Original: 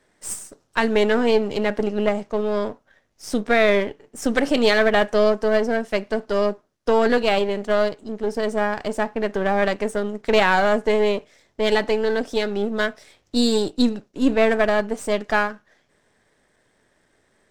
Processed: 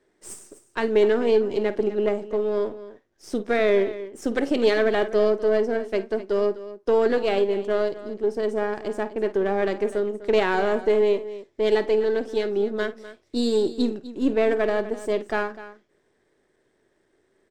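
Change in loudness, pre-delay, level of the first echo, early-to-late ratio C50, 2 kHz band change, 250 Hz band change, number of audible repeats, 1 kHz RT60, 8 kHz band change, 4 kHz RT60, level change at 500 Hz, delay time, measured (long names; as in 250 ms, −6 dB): −2.5 dB, no reverb audible, −15.0 dB, no reverb audible, −7.5 dB, −4.5 dB, 2, no reverb audible, can't be measured, no reverb audible, −1.0 dB, 51 ms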